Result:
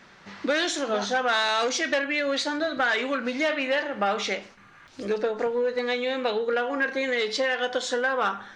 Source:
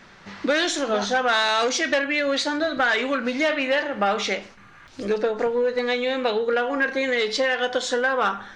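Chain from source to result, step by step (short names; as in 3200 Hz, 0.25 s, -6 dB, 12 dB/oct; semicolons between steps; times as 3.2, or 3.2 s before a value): low shelf 67 Hz -10 dB; gain -3 dB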